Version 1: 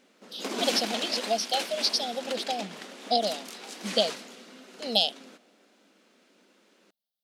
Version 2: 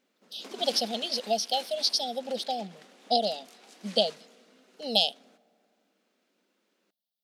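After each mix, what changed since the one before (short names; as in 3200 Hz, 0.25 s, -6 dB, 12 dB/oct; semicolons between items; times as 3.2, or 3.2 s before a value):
background -12.0 dB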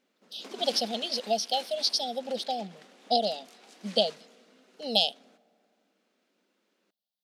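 master: add high shelf 9300 Hz -4.5 dB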